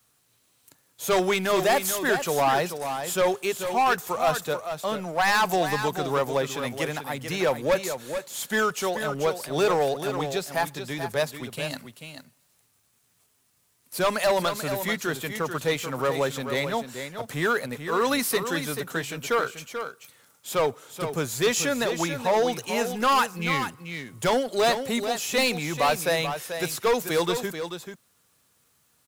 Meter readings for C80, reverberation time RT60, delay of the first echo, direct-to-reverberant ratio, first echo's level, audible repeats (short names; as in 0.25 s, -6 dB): none, none, 0.437 s, none, -8.5 dB, 1